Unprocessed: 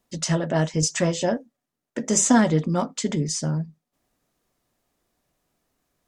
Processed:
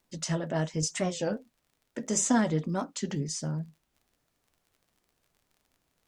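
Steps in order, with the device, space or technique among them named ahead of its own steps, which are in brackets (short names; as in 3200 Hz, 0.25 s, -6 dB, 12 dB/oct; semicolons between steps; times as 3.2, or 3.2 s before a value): warped LP (record warp 33 1/3 rpm, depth 160 cents; crackle 42/s -44 dBFS; pink noise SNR 45 dB); gain -7.5 dB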